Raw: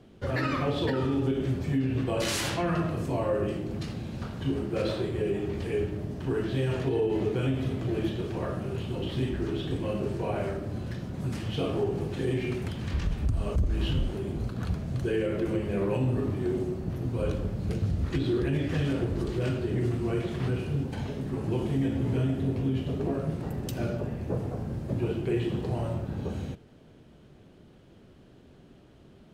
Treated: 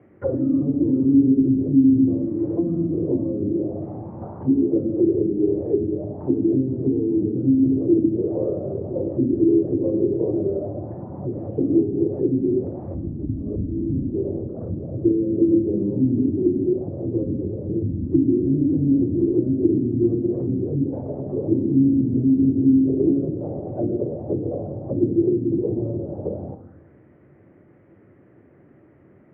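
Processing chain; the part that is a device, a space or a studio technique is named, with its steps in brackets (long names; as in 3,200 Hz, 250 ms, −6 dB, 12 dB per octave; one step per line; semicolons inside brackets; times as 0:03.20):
envelope filter bass rig (envelope-controlled low-pass 260–2,200 Hz down, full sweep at −24.5 dBFS; loudspeaker in its box 88–2,000 Hz, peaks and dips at 95 Hz +7 dB, 330 Hz +8 dB, 540 Hz +5 dB, 1,600 Hz −6 dB)
rectangular room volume 270 cubic metres, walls mixed, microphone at 0.36 metres
level −1.5 dB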